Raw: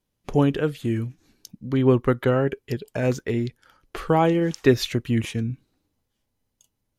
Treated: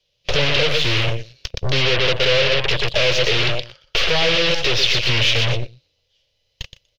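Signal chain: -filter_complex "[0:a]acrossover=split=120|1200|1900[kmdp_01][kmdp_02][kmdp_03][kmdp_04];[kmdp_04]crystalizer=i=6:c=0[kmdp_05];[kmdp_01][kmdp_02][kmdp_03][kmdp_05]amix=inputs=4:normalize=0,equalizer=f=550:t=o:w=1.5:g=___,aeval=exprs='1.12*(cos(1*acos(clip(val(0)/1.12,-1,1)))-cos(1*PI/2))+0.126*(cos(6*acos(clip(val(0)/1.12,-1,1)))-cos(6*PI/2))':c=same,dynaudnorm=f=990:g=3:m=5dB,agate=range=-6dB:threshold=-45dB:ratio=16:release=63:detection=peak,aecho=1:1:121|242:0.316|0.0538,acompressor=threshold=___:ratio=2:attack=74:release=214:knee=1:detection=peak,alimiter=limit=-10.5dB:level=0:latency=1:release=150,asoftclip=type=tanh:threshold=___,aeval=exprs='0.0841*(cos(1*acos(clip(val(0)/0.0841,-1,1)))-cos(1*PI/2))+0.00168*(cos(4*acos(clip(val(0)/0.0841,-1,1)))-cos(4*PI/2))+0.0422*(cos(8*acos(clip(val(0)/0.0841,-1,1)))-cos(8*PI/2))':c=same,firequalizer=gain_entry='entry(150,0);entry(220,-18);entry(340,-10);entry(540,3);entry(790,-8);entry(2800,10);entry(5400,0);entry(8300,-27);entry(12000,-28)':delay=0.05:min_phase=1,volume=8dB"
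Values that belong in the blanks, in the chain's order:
8.5, -23dB, -21.5dB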